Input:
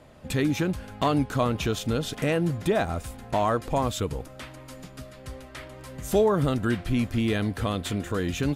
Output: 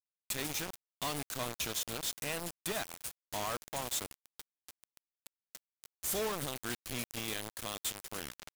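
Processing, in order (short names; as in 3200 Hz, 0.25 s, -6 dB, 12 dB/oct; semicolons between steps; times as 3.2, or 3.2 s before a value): tape stop at the end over 0.36 s; pre-emphasis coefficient 0.9; companded quantiser 2-bit; gain -5.5 dB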